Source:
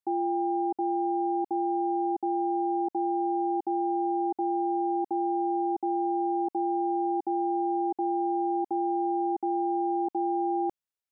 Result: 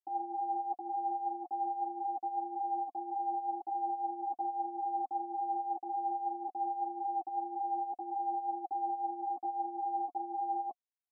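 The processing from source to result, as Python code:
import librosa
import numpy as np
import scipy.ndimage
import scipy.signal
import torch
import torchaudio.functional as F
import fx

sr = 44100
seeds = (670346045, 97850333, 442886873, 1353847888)

y = fx.formant_cascade(x, sr, vowel='a')
y = fx.peak_eq(y, sr, hz=270.0, db=8.5, octaves=0.77)
y = fx.ensemble(y, sr)
y = y * 10.0 ** (4.0 / 20.0)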